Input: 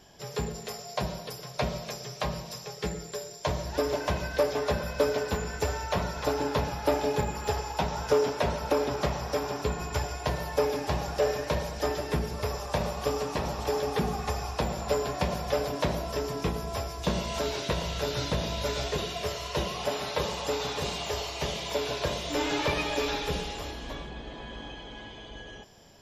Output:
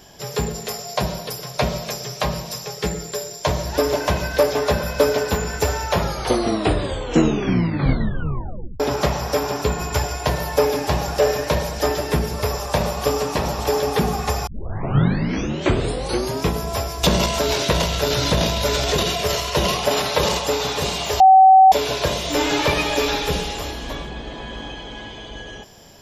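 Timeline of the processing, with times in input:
5.87 s: tape stop 2.93 s
14.47 s: tape start 2.00 s
17.03–20.39 s: transient shaper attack +2 dB, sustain +12 dB
21.20–21.72 s: bleep 762 Hz -14.5 dBFS
whole clip: treble shelf 9.5 kHz +8 dB; trim +8.5 dB

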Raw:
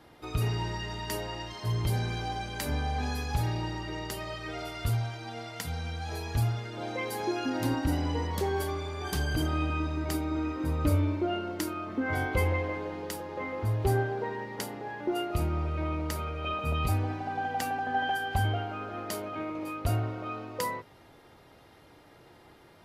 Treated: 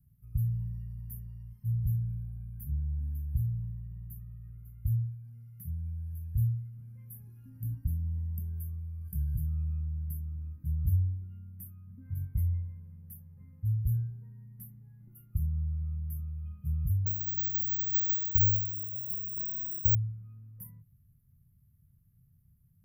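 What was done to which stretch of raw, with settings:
1.85–5.24 s: peaking EQ 5.4 kHz -14.5 dB 1.3 oct
17.06–19.95 s: careless resampling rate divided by 2×, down none, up zero stuff
whole clip: inverse Chebyshev band-stop 310–7700 Hz, stop band 40 dB

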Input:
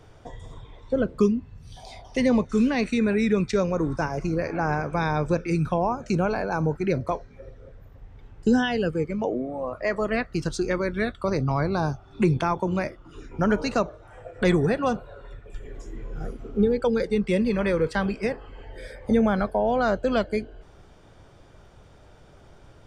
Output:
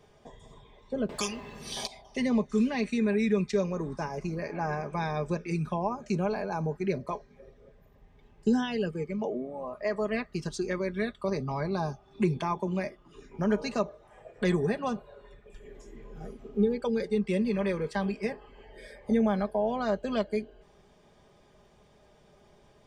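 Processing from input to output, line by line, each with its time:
1.09–1.87 s: spectrum-flattening compressor 4:1
whole clip: bass shelf 65 Hz -12 dB; band-stop 1.4 kHz, Q 6.7; comb 4.9 ms, depth 55%; trim -6.5 dB

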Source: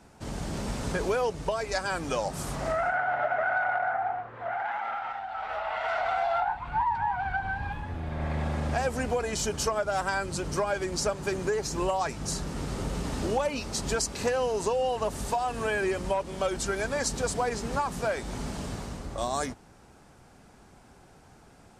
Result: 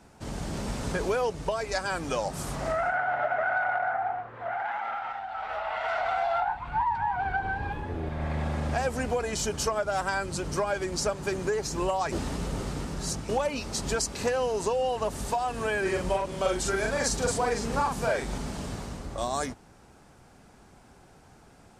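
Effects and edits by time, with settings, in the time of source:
7.15–8.09 s: peaking EQ 400 Hz +11.5 dB 0.82 oct
12.12–13.29 s: reverse
15.81–18.38 s: doubling 44 ms -2 dB

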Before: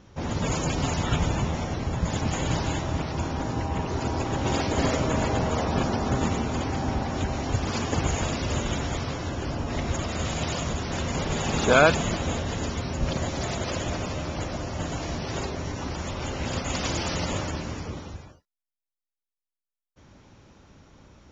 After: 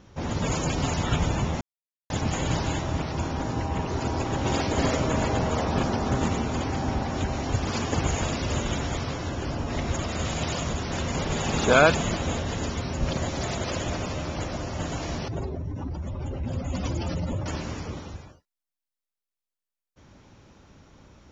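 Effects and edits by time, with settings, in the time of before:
1.61–2.10 s: mute
5.55–6.32 s: loudspeaker Doppler distortion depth 0.1 ms
15.28–17.46 s: spectral contrast enhancement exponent 2

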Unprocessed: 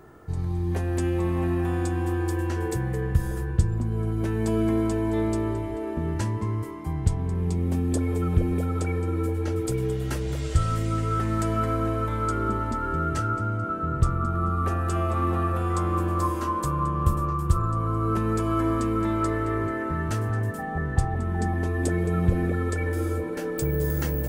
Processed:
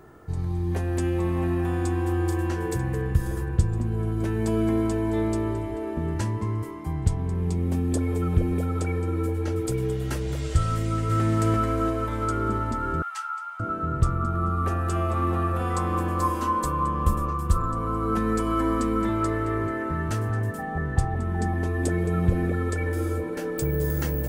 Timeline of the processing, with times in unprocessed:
1.37–2.07 s: echo throw 470 ms, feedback 75%, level -10 dB
10.75–11.22 s: echo throw 340 ms, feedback 60%, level -2.5 dB
13.02–13.60 s: rippled Chebyshev high-pass 780 Hz, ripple 3 dB
15.59–19.09 s: comb 4 ms

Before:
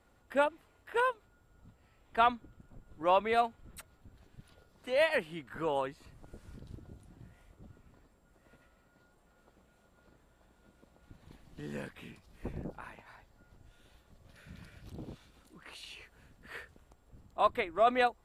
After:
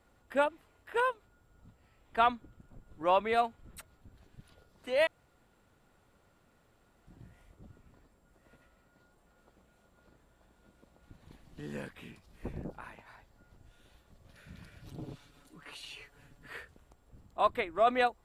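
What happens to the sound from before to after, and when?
5.07–7.07 s: room tone
14.80–16.53 s: comb 7 ms

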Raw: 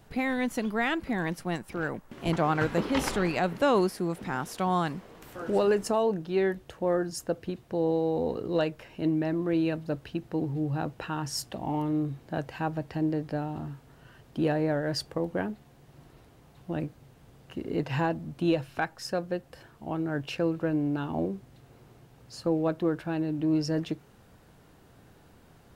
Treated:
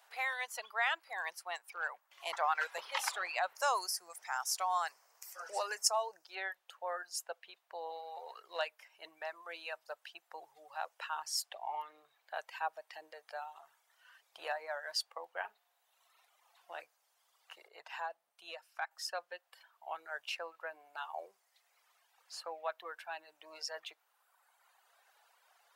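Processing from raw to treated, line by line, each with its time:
3.55–6.35 s: resonant high shelf 4.4 kHz +7 dB, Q 3
15.39–16.82 s: doubling 42 ms -9.5 dB
17.68–18.91 s: gain -6 dB
whole clip: reverb removal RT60 1.7 s; inverse Chebyshev high-pass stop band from 280 Hz, stop band 50 dB; trim -2 dB

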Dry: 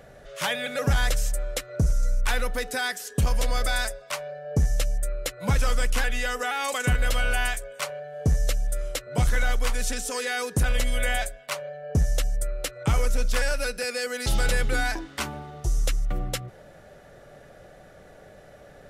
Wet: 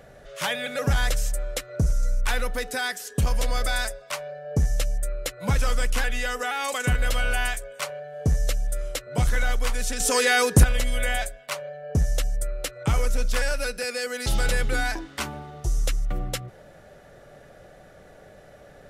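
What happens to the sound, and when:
10.00–10.64 s: gain +8.5 dB

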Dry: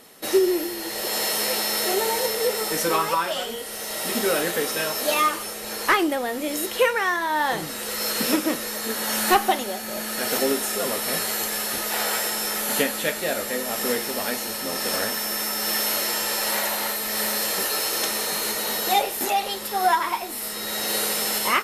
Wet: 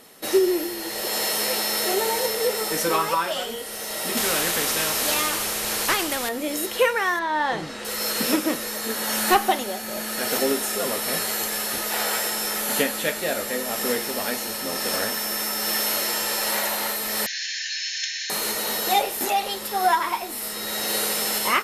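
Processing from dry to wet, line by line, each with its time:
4.17–6.29 s: spectrum-flattening compressor 2:1
7.19–7.85 s: distance through air 94 m
17.26–18.30 s: brick-wall FIR band-pass 1.5–7.2 kHz

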